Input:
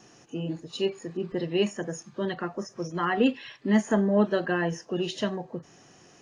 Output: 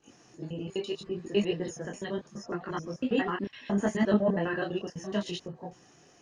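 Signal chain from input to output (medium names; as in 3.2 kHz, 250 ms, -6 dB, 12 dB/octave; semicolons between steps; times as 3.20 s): slices played last to first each 84 ms, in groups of 4; detune thickener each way 25 cents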